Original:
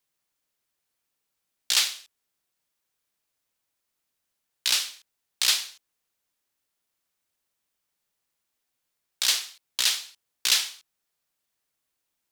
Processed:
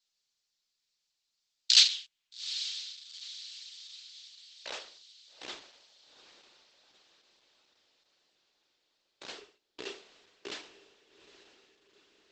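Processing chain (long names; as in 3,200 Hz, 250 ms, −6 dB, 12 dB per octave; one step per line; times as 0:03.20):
0:09.37–0:10.49: hollow resonant body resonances 410/2,700 Hz, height 14 dB → 10 dB, ringing for 45 ms
band-pass filter sweep 4,500 Hz → 340 Hz, 0:01.65–0:05.32
feedback delay with all-pass diffusion 842 ms, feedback 49%, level −14 dB
level +7.5 dB
Opus 12 kbit/s 48,000 Hz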